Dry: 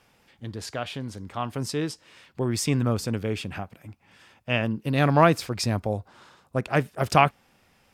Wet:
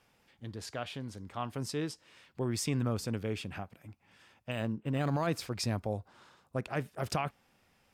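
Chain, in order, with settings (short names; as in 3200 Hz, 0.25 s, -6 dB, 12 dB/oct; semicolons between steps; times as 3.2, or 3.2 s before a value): limiter -14.5 dBFS, peak gain reduction 10.5 dB; 4.51–5.27 decimation joined by straight lines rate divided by 8×; gain -7 dB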